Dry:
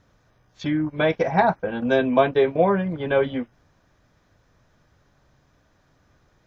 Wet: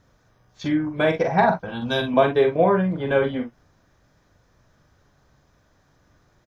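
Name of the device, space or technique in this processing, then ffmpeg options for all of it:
exciter from parts: -filter_complex "[0:a]asettb=1/sr,asplit=3[s0][s1][s2];[s0]atrim=end=1.594[s3];[s1]atrim=start=1.59:end=2.14,asetpts=PTS-STARTPTS,afade=t=in:d=0.004:c=qsin,afade=t=out:st=0.546:d=0.004:c=qsin,equalizer=f=125:t=o:w=1:g=4,equalizer=f=250:t=o:w=1:g=-4,equalizer=f=500:t=o:w=1:g=-10,equalizer=f=1000:t=o:w=1:g=4,equalizer=f=2000:t=o:w=1:g=-7,equalizer=f=4000:t=o:w=1:g=11[s4];[s2]atrim=start=2.136[s5];[s3][s4]acrossfade=d=0.004:c1=hsin:c2=qsin[s6];[s6][s5]acrossfade=d=0.004:c1=qsin:c2=hsin,asplit=2[s7][s8];[s8]highpass=f=2400:w=0.5412,highpass=f=2400:w=1.3066,asoftclip=type=tanh:threshold=0.0178,volume=0.282[s9];[s7][s9]amix=inputs=2:normalize=0,aecho=1:1:43|60:0.473|0.158"

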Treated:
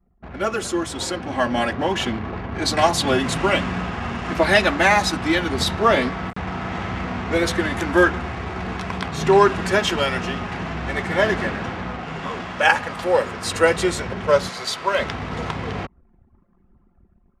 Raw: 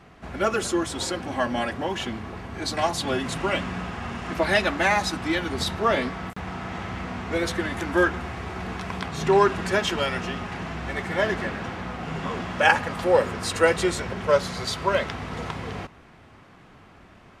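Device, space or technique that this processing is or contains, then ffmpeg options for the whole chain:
voice memo with heavy noise removal: -filter_complex "[0:a]asettb=1/sr,asplit=3[s0][s1][s2];[s0]atrim=end=12.004[s3];[s1]atrim=start=12:end=13.46,asetpts=PTS-STARTPTS,afade=t=in:d=0.004:c=qsin,afade=t=out:st=1.456:d=0.004:c=qsin,lowshelf=f=410:g=-5.5[s4];[s2]atrim=start=13.456[s5];[s3][s4]acrossfade=d=0.004:c1=hsin:c2=qsin[s6];[s6][s5]acrossfade=d=0.004:c1=qsin:c2=hsin,asettb=1/sr,asplit=3[s7][s8][s9];[s7]atrim=end=14.494[s10];[s8]atrim=start=14.49:end=14.99,asetpts=PTS-STARTPTS,afade=t=in:d=0.004:c=qsin,afade=t=out:st=0.496:d=0.004:c=qsin,highpass=f=550:p=1[s11];[s9]atrim=start=14.986[s12];[s10][s11]acrossfade=d=0.004:c1=hsin:c2=qsin[s13];[s13][s12]acrossfade=d=0.004:c1=qsin:c2=hsin,anlmdn=0.398,dynaudnorm=f=600:g=5:m=2.66"

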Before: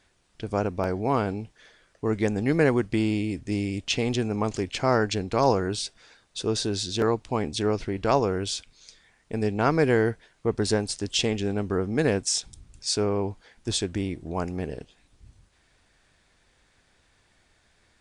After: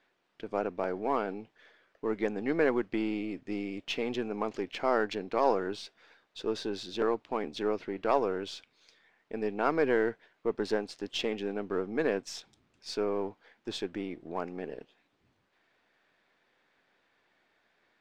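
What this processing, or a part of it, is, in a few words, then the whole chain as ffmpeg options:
crystal radio: -af "highpass=270,lowpass=3000,aeval=exprs='if(lt(val(0),0),0.708*val(0),val(0))':c=same,volume=0.75"

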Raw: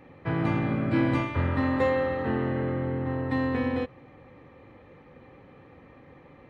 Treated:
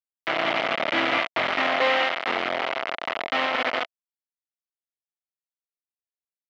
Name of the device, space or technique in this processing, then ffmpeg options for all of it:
hand-held game console: -af "acrusher=bits=3:mix=0:aa=0.000001,highpass=410,equalizer=f=440:t=q:w=4:g=-3,equalizer=f=670:t=q:w=4:g=9,equalizer=f=1300:t=q:w=4:g=5,equalizer=f=2100:t=q:w=4:g=8,equalizer=f=3000:t=q:w=4:g=6,lowpass=f=4100:w=0.5412,lowpass=f=4100:w=1.3066"

